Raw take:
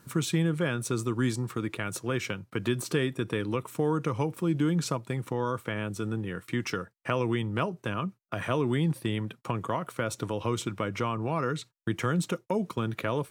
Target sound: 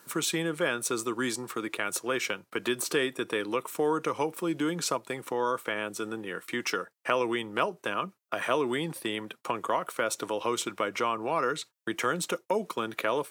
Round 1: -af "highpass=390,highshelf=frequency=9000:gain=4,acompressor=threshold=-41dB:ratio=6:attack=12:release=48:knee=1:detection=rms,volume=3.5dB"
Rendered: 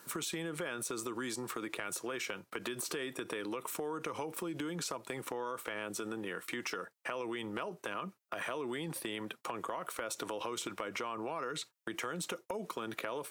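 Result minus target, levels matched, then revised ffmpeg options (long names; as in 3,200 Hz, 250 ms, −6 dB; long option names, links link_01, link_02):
downward compressor: peak gain reduction +14.5 dB
-af "highpass=390,highshelf=frequency=9000:gain=4,volume=3.5dB"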